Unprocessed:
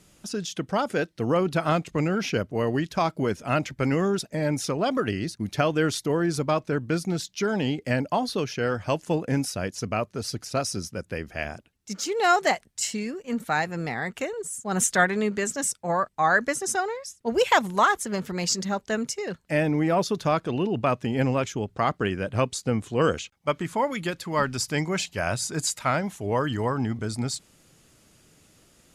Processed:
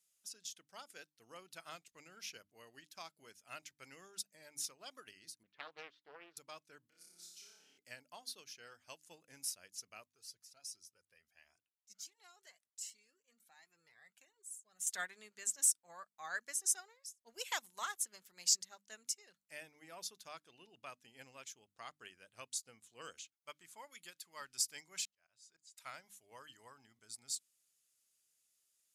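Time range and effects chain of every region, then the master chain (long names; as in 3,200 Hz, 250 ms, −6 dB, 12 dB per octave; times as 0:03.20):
0:05.43–0:06.37: loudspeaker in its box 220–2,600 Hz, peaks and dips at 480 Hz +3 dB, 690 Hz −8 dB, 1,000 Hz +7 dB, 2,300 Hz −4 dB + highs frequency-modulated by the lows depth 0.48 ms
0:06.87–0:07.78: parametric band 120 Hz −14 dB 0.55 octaves + downward compressor, threshold −39 dBFS + flutter between parallel walls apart 5 metres, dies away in 1.2 s
0:10.06–0:14.87: high-shelf EQ 6,000 Hz −3 dB + downward compressor 4 to 1, threshold −26 dBFS + flanger whose copies keep moving one way rising 1.4 Hz
0:25.05–0:25.78: low-pass filter 5,500 Hz + volume swells 593 ms
whole clip: first-order pre-emphasis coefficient 0.97; mains-hum notches 50/100/150/200/250/300 Hz; expander for the loud parts 1.5 to 1, over −53 dBFS; level −2.5 dB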